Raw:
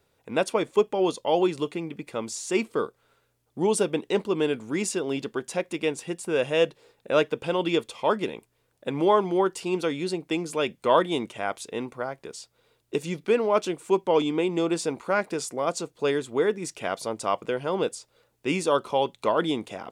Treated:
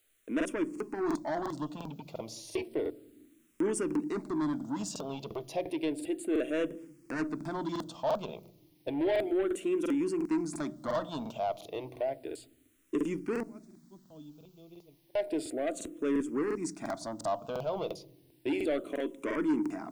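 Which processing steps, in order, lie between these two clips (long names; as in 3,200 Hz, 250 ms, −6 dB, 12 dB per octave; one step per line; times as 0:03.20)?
0:13.43–0:15.14: guitar amp tone stack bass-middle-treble 10-0-1
downward expander −42 dBFS
in parallel at −2 dB: downward compressor, threshold −29 dBFS, peak gain reduction 14 dB
on the sum: hollow resonant body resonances 300/640 Hz, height 13 dB, ringing for 40 ms
bit-depth reduction 10 bits, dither triangular
on a send at −22 dB: spectral tilt −4.5 dB per octave + convolution reverb RT60 0.80 s, pre-delay 7 ms
on the sum: soft clipping −14 dBFS, distortion −10 dB
regular buffer underruns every 0.35 s, samples 2,048, repeat, from 0:00.36
frequency shifter mixed with the dry sound −0.32 Hz
level −9 dB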